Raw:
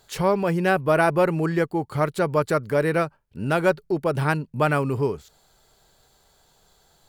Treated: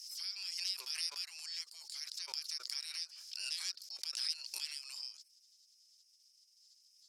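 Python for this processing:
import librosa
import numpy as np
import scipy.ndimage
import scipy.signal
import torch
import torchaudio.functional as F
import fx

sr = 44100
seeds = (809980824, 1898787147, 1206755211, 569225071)

y = fx.spec_gate(x, sr, threshold_db=-20, keep='weak')
y = fx.ladder_bandpass(y, sr, hz=5400.0, resonance_pct=80)
y = fx.pre_swell(y, sr, db_per_s=40.0)
y = y * librosa.db_to_amplitude(8.5)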